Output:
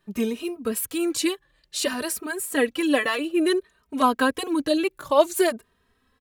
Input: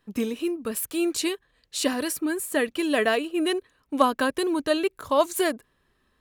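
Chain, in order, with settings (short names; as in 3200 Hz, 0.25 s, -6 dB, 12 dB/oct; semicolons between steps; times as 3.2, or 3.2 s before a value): endless flanger 2.9 ms +0.57 Hz; gain +4.5 dB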